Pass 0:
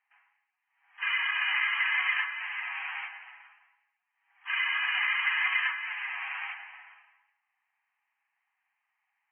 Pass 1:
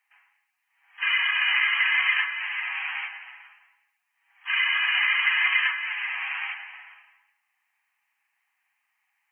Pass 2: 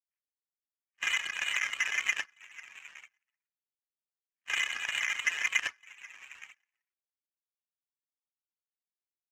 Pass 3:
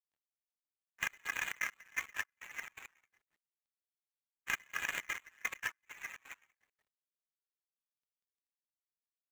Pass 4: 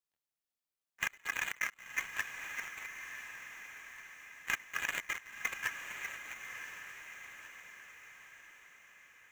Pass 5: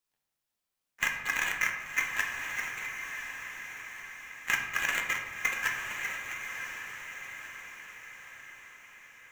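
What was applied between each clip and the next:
high-shelf EQ 2,200 Hz +11.5 dB
high-pass filter 1,300 Hz 12 dB per octave; reverb reduction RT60 1.3 s; power curve on the samples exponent 2; level +2 dB
running median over 15 samples; downward compressor 3 to 1, threshold −48 dBFS, peak gain reduction 11.5 dB; gate pattern ".xxx.x...x.x." 168 BPM −24 dB; level +14.5 dB
feedback delay with all-pass diffusion 1,030 ms, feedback 52%, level −7 dB; level +1.5 dB
convolution reverb RT60 1.3 s, pre-delay 3 ms, DRR 2 dB; level +5 dB

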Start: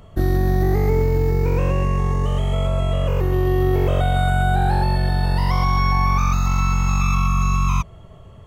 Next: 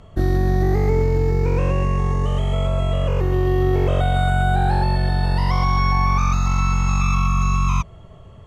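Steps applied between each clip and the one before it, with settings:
low-pass filter 9,100 Hz 12 dB per octave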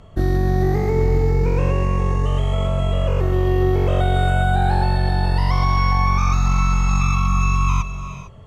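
reverb whose tail is shaped and stops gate 480 ms rising, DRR 10 dB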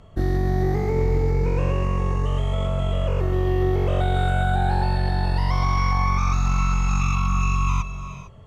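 highs frequency-modulated by the lows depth 0.11 ms
level −3.5 dB

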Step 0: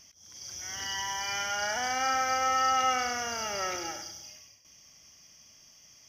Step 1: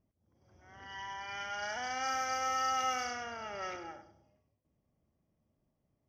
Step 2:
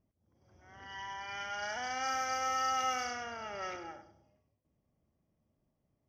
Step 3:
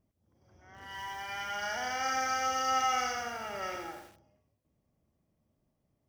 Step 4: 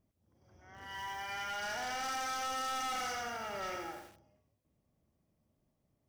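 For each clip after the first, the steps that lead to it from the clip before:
low-pass that shuts in the quiet parts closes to 440 Hz, open at −23.5 dBFS; level −6.5 dB
no processing that can be heard
feedback echo at a low word length 84 ms, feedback 55%, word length 9 bits, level −5 dB; level +2 dB
hard clipping −34 dBFS, distortion −7 dB; level −1 dB

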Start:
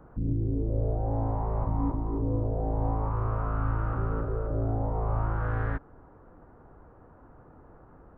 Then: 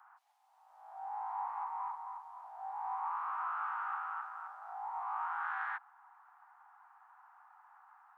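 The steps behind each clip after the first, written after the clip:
Butterworth high-pass 780 Hz 96 dB per octave
level +1 dB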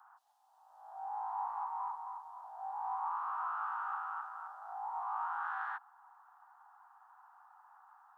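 parametric band 2,200 Hz −13.5 dB 0.62 octaves
level +1.5 dB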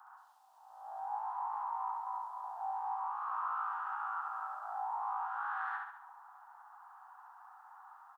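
downward compressor, threshold −40 dBFS, peak gain reduction 7 dB
on a send: repeating echo 69 ms, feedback 50%, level −3.5 dB
on the sum: level +3.5 dB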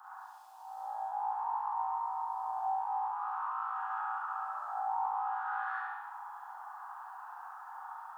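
downward compressor 2 to 1, threshold −50 dBFS, peak gain reduction 9.5 dB
four-comb reverb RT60 0.83 s, combs from 30 ms, DRR −5 dB
level +3.5 dB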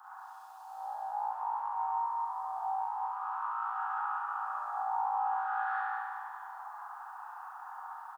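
repeating echo 194 ms, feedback 54%, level −5.5 dB

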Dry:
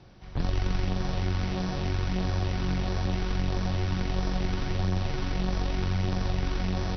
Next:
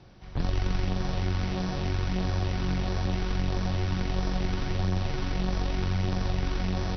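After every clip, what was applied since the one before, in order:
no processing that can be heard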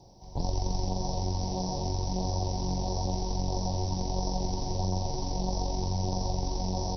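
drawn EQ curve 290 Hz 0 dB, 940 Hz +8 dB, 1,300 Hz −26 dB, 2,900 Hz −14 dB, 5,500 Hz +12 dB
level −3 dB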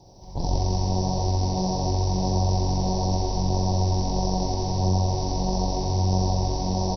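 loudspeakers that aren't time-aligned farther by 22 metres −2 dB, 55 metres −3 dB
level +2.5 dB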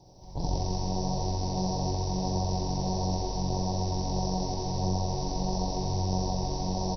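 rectangular room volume 380 cubic metres, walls furnished, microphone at 0.48 metres
level −4.5 dB

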